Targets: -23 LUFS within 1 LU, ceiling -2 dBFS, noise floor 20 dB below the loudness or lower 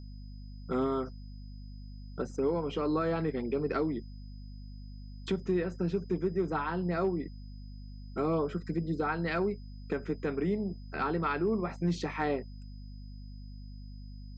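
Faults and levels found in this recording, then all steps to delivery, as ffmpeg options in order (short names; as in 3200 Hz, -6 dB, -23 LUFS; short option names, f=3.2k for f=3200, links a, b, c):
hum 50 Hz; harmonics up to 250 Hz; hum level -42 dBFS; steady tone 5000 Hz; tone level -63 dBFS; loudness -32.5 LUFS; peak -20.0 dBFS; loudness target -23.0 LUFS
-> -af "bandreject=f=50:t=h:w=4,bandreject=f=100:t=h:w=4,bandreject=f=150:t=h:w=4,bandreject=f=200:t=h:w=4,bandreject=f=250:t=h:w=4"
-af "bandreject=f=5k:w=30"
-af "volume=9.5dB"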